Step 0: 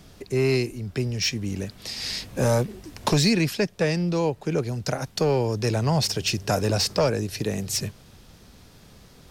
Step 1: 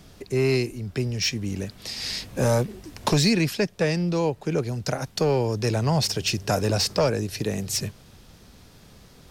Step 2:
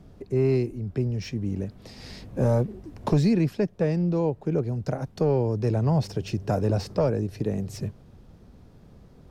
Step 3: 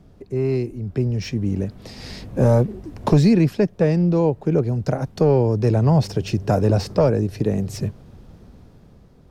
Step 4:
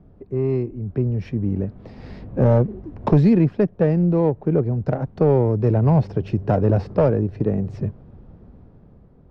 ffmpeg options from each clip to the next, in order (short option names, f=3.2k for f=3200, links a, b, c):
-af anull
-af "tiltshelf=f=1.4k:g=9.5,volume=-8.5dB"
-af "dynaudnorm=f=160:g=11:m=6.5dB"
-af "adynamicsmooth=sensitivity=0.5:basefreq=1.6k"